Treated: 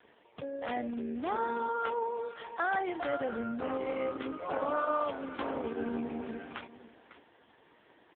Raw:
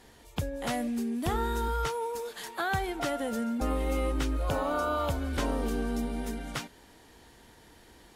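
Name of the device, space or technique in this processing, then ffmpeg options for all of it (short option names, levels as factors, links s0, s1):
satellite phone: -filter_complex "[0:a]asettb=1/sr,asplit=3[s0][s1][s2];[s0]atrim=end=5.734[s3];[s1]atrim=start=5.73:end=6.33,asetpts=PTS-STARTPTS,afade=t=in:d=0.004:c=qsin,afade=t=out:st=0.596:d=0.004:c=qsin,adynamicequalizer=threshold=0.00631:dfrequency=260:dqfactor=0.92:tfrequency=260:tqfactor=0.92:attack=5:release=100:ratio=0.375:range=1.5:mode=boostabove:tftype=bell[s4];[s2]atrim=start=6.326[s5];[s3][s4]acrossfade=d=0.004:c1=hsin:c2=qsin[s6];[s6][s5]acrossfade=d=0.004:c1=qsin:c2=hsin,highpass=310,lowpass=3400,aecho=1:1:551:0.178,volume=1.12" -ar 8000 -c:a libopencore_amrnb -b:a 4750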